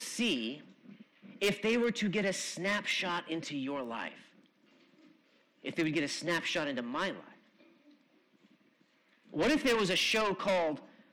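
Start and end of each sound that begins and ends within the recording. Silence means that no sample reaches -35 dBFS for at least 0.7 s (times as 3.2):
1.42–4.08
5.66–7.12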